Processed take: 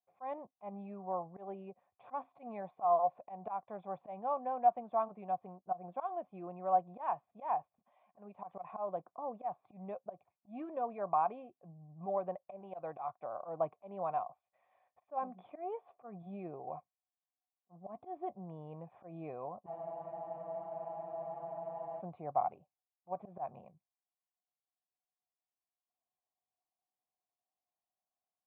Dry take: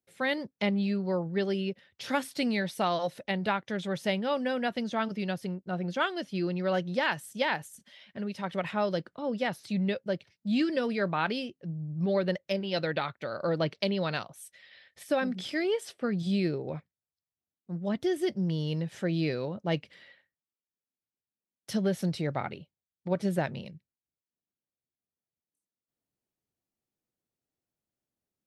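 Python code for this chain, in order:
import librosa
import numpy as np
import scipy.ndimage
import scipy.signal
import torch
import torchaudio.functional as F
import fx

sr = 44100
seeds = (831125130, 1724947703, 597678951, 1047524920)

y = fx.auto_swell(x, sr, attack_ms=124.0)
y = fx.formant_cascade(y, sr, vowel='a')
y = fx.spec_freeze(y, sr, seeds[0], at_s=19.68, hold_s=2.31)
y = y * 10.0 ** (9.0 / 20.0)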